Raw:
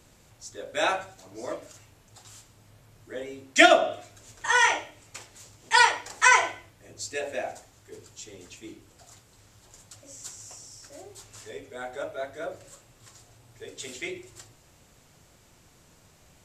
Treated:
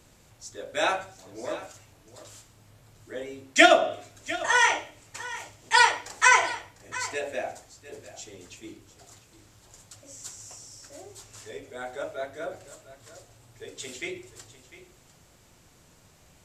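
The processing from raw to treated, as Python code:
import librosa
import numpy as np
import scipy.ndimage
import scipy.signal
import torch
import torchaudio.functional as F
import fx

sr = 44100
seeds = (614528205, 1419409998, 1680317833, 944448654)

y = x + 10.0 ** (-16.0 / 20.0) * np.pad(x, (int(700 * sr / 1000.0), 0))[:len(x)]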